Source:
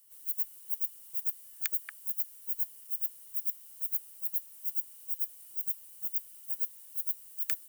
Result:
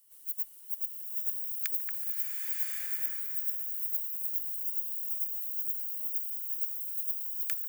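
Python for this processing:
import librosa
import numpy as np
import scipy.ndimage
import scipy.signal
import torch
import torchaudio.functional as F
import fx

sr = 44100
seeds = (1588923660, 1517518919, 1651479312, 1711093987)

y = fx.echo_wet_bandpass(x, sr, ms=144, feedback_pct=73, hz=450.0, wet_db=-4.0)
y = fx.rev_bloom(y, sr, seeds[0], attack_ms=1140, drr_db=-2.5)
y = F.gain(torch.from_numpy(y), -2.0).numpy()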